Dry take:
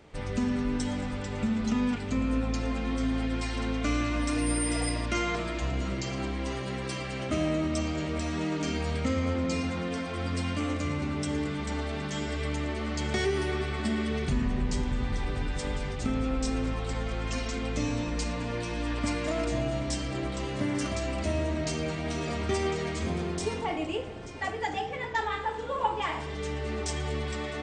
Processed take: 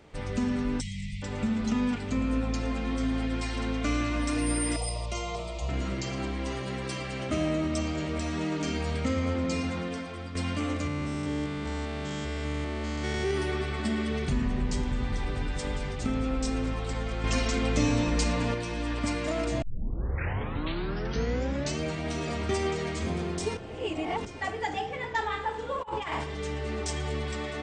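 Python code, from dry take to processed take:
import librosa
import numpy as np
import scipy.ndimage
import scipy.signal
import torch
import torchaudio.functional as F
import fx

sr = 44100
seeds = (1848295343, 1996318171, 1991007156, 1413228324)

y = fx.spec_erase(x, sr, start_s=0.81, length_s=0.42, low_hz=220.0, high_hz=1800.0)
y = fx.fixed_phaser(y, sr, hz=670.0, stages=4, at=(4.76, 5.69))
y = fx.spec_steps(y, sr, hold_ms=200, at=(10.87, 13.31))
y = fx.over_compress(y, sr, threshold_db=-33.0, ratio=-0.5, at=(25.8, 26.24))
y = fx.edit(y, sr, fx.fade_out_to(start_s=9.75, length_s=0.6, floor_db=-9.5),
    fx.clip_gain(start_s=17.24, length_s=1.3, db=5.0),
    fx.tape_start(start_s=19.62, length_s=2.19),
    fx.reverse_span(start_s=23.57, length_s=0.68), tone=tone)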